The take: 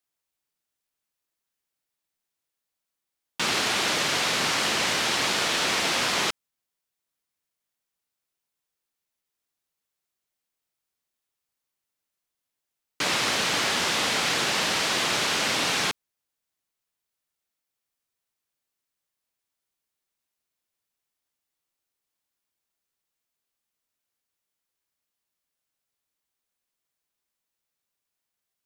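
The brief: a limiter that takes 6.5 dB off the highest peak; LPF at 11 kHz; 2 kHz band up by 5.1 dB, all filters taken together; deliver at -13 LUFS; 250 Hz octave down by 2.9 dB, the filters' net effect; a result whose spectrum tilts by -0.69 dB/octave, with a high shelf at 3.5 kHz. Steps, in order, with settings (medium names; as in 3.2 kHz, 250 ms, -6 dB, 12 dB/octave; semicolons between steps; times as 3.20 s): low-pass 11 kHz; peaking EQ 250 Hz -4 dB; peaking EQ 2 kHz +7.5 dB; treble shelf 3.5 kHz -4 dB; trim +11 dB; peak limiter -5.5 dBFS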